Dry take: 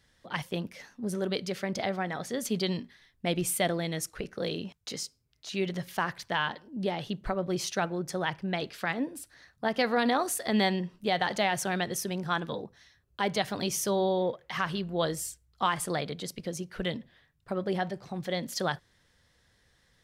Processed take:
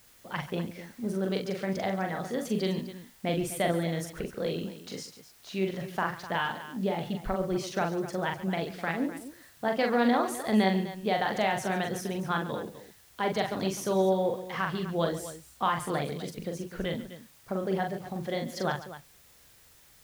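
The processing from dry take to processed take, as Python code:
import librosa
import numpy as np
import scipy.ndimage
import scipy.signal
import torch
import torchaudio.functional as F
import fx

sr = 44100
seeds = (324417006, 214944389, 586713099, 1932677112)

y = fx.high_shelf(x, sr, hz=3000.0, db=-9.5)
y = fx.quant_dither(y, sr, seeds[0], bits=10, dither='triangular')
y = fx.echo_multitap(y, sr, ms=(42, 139, 253), db=(-4.5, -15.5, -13.5))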